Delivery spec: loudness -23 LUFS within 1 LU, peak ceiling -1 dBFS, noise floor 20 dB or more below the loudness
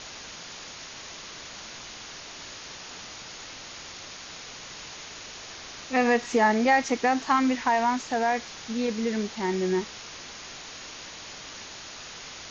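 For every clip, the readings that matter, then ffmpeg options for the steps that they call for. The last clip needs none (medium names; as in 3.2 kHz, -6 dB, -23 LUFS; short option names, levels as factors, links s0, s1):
noise floor -42 dBFS; noise floor target -49 dBFS; loudness -29.0 LUFS; peak level -10.0 dBFS; loudness target -23.0 LUFS
-> -af "afftdn=nr=7:nf=-42"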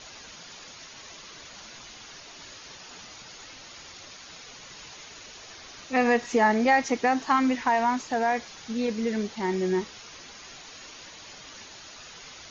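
noise floor -46 dBFS; loudness -25.0 LUFS; peak level -10.0 dBFS; loudness target -23.0 LUFS
-> -af "volume=1.26"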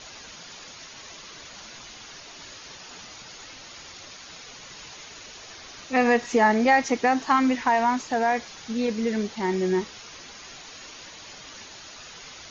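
loudness -23.0 LUFS; peak level -8.0 dBFS; noise floor -44 dBFS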